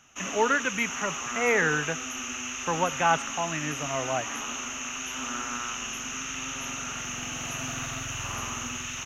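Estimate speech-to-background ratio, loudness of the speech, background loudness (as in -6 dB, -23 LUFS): 4.5 dB, -28.0 LUFS, -32.5 LUFS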